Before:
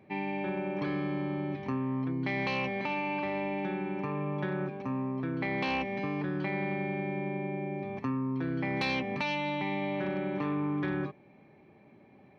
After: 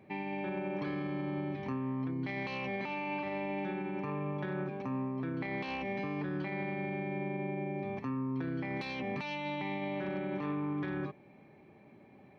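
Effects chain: peak limiter -28.5 dBFS, peak gain reduction 11.5 dB

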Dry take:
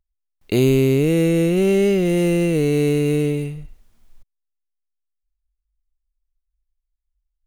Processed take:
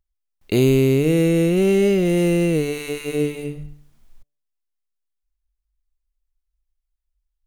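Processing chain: de-hum 146.7 Hz, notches 5

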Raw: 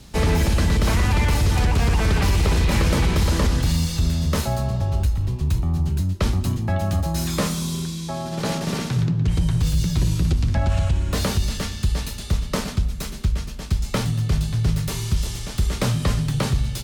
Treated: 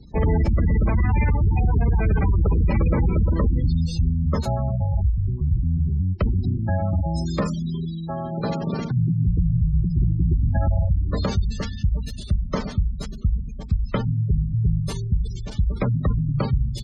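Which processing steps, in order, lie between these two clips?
spectral gate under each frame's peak -20 dB strong

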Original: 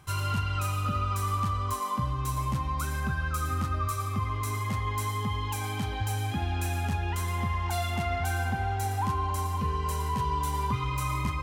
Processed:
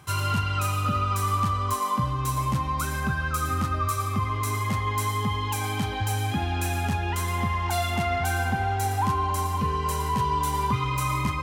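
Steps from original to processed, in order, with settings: high-pass 89 Hz; trim +5 dB

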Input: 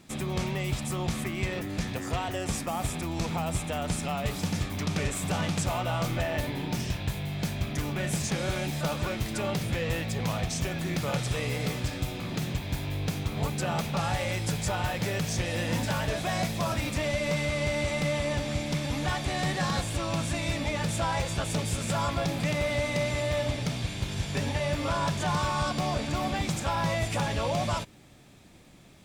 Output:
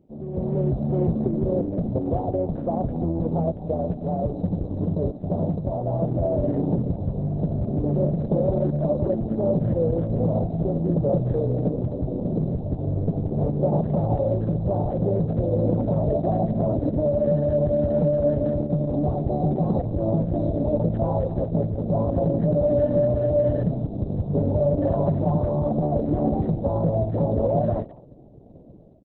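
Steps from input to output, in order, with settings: 3.34–5.76 s: peaking EQ 7.7 kHz +13 dB 1.1 oct; level rider gain up to 13.5 dB; Chebyshev band-stop 600–8100 Hz, order 3; peak limiter -11.5 dBFS, peak gain reduction 8 dB; bass shelf 120 Hz -7 dB; speakerphone echo 210 ms, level -16 dB; Opus 6 kbps 48 kHz

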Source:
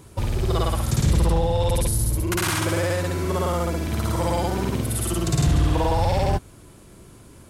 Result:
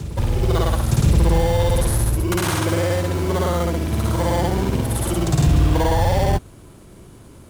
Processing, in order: in parallel at -3 dB: sample-and-hold 17×; on the sum: reverse echo 1027 ms -14.5 dB; trim -1 dB

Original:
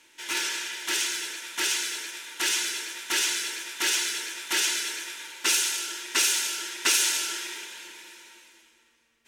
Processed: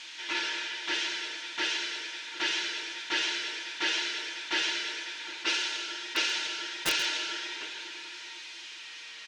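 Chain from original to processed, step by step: zero-crossing glitches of -26 dBFS; low-pass 4.5 kHz 24 dB/octave; comb 6.4 ms, depth 41%; echo from a far wall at 130 m, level -13 dB; integer overflow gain 14 dB; dynamic bell 600 Hz, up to +4 dB, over -53 dBFS, Q 3; on a send: delay 133 ms -17 dB; on the sum: attacks held to a fixed rise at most 340 dB/s; trim -2.5 dB

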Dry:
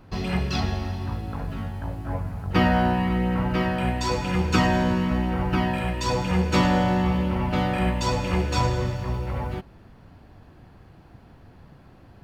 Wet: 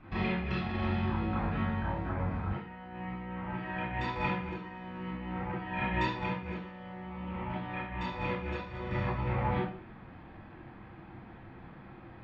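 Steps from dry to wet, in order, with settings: low-pass 3.2 kHz 24 dB/octave; bass shelf 440 Hz -2 dB; compressor with a negative ratio -30 dBFS, ratio -0.5; reverberation RT60 0.45 s, pre-delay 26 ms, DRR -4.5 dB; trim -6.5 dB

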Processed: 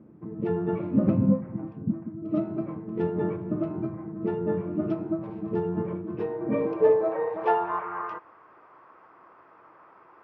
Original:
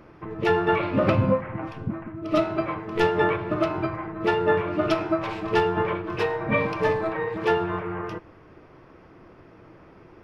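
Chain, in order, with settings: 4.94–5.64 s: dynamic bell 2.6 kHz, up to -5 dB, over -38 dBFS, Q 1.1; band-pass sweep 210 Hz -> 1.1 kHz, 6.04–7.90 s; trim +5.5 dB

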